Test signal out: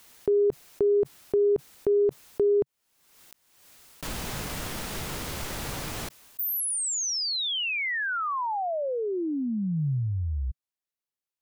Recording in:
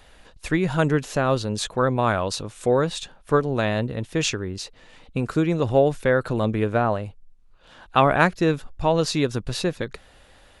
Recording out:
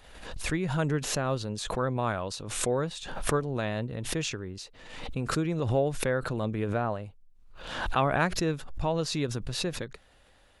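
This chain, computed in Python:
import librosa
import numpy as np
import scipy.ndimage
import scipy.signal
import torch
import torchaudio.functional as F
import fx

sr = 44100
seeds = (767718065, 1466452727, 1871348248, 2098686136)

y = fx.dynamic_eq(x, sr, hz=140.0, q=2.3, threshold_db=-36.0, ratio=4.0, max_db=3)
y = fx.pre_swell(y, sr, db_per_s=54.0)
y = y * librosa.db_to_amplitude(-9.0)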